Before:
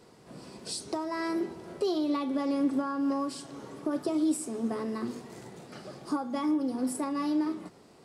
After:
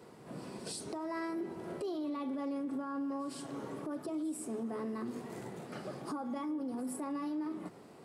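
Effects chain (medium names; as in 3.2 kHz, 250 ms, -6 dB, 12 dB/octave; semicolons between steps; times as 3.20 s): high-pass 90 Hz; peaking EQ 5.3 kHz -7.5 dB 1.5 oct; compression 2:1, threshold -38 dBFS, peak gain reduction 8.5 dB; peak limiter -33.5 dBFS, peak gain reduction 8.5 dB; reverse echo 104 ms -18 dB; trim +2 dB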